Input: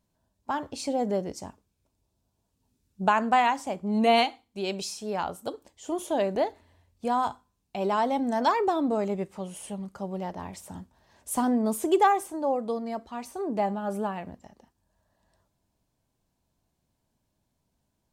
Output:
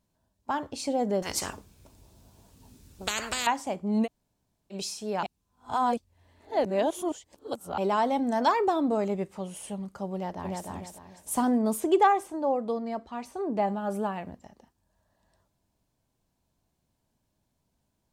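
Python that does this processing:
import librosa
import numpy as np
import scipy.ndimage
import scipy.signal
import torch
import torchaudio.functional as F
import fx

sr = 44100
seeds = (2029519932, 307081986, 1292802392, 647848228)

y = fx.spectral_comp(x, sr, ratio=10.0, at=(1.22, 3.47))
y = fx.echo_throw(y, sr, start_s=10.14, length_s=0.54, ms=300, feedback_pct=30, wet_db=-2.5)
y = fx.high_shelf(y, sr, hz=7400.0, db=-10.5, at=(11.8, 13.68))
y = fx.edit(y, sr, fx.room_tone_fill(start_s=4.05, length_s=0.68, crossfade_s=0.06),
    fx.reverse_span(start_s=5.23, length_s=2.55), tone=tone)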